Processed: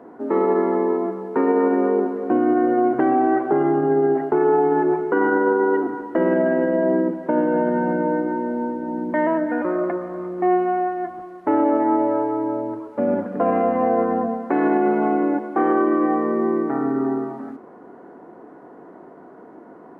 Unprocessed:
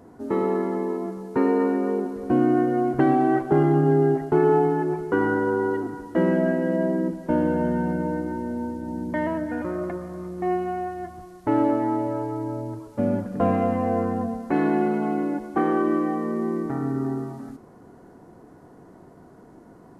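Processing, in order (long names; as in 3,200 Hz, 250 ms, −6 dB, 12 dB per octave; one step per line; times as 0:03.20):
brickwall limiter −16.5 dBFS, peak gain reduction 7.5 dB
three-way crossover with the lows and the highs turned down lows −24 dB, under 230 Hz, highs −21 dB, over 2,400 Hz
level +8 dB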